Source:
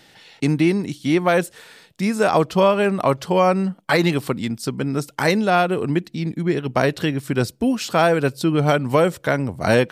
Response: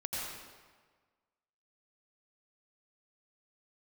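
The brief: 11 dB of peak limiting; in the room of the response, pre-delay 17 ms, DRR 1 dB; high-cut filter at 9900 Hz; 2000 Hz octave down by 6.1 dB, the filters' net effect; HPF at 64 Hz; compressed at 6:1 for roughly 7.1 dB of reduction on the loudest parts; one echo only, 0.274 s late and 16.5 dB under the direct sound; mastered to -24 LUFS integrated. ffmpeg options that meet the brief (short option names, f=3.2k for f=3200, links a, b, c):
-filter_complex "[0:a]highpass=64,lowpass=9.9k,equalizer=f=2k:t=o:g=-8.5,acompressor=threshold=-20dB:ratio=6,alimiter=limit=-19.5dB:level=0:latency=1,aecho=1:1:274:0.15,asplit=2[a][b];[1:a]atrim=start_sample=2205,adelay=17[c];[b][c]afir=irnorm=-1:irlink=0,volume=-4.5dB[d];[a][d]amix=inputs=2:normalize=0,volume=3dB"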